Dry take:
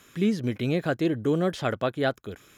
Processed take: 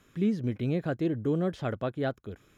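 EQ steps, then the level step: tilt -2 dB/oct; -7.0 dB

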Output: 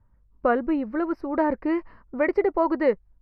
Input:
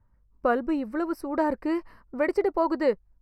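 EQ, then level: dynamic EQ 2100 Hz, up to +5 dB, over -49 dBFS, Q 3.5; air absorption 290 m; +3.0 dB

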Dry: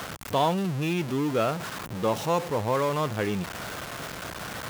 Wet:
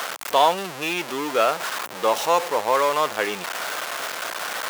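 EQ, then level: HPF 580 Hz 12 dB/oct; +8.5 dB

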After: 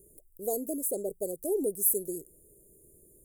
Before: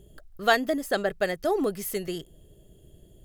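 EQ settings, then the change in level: elliptic band-stop 470–8800 Hz, stop band 70 dB; tone controls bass -13 dB, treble +11 dB; 0.0 dB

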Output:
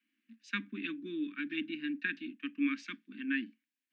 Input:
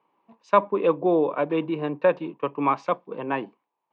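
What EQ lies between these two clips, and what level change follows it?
Chebyshev high-pass 220 Hz, order 5; Chebyshev band-stop 280–1600 Hz, order 4; 0.0 dB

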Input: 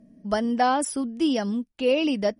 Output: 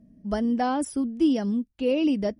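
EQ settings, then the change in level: bell 67 Hz +11.5 dB 2.7 oct; dynamic EQ 330 Hz, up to +6 dB, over -34 dBFS, Q 1.3; low shelf 140 Hz +4.5 dB; -7.0 dB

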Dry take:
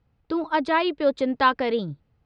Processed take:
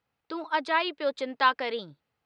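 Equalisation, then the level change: HPF 1100 Hz 6 dB/oct; 0.0 dB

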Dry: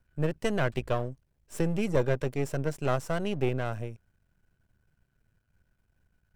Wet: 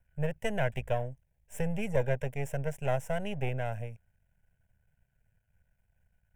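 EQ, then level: fixed phaser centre 1200 Hz, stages 6; 0.0 dB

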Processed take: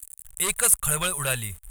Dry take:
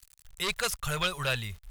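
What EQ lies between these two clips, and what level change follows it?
resonant high shelf 6900 Hz +11 dB, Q 3; +2.5 dB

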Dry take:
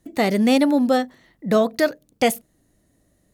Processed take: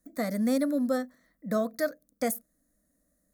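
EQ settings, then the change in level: high shelf 12000 Hz +11 dB; fixed phaser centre 570 Hz, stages 8; -8.5 dB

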